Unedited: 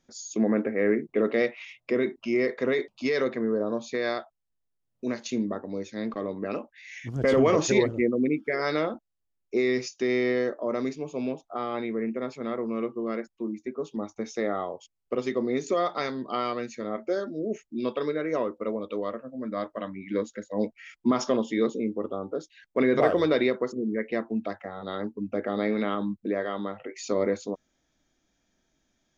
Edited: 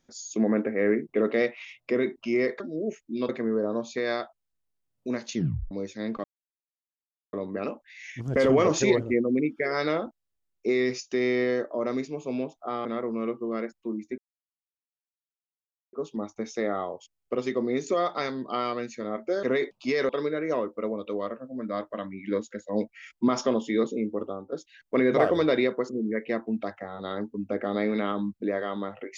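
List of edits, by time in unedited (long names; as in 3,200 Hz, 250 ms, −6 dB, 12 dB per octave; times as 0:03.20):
0:02.60–0:03.26: swap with 0:17.23–0:17.92
0:05.31: tape stop 0.37 s
0:06.21: splice in silence 1.09 s
0:11.73–0:12.40: remove
0:13.73: splice in silence 1.75 s
0:22.08–0:22.35: fade out, to −11.5 dB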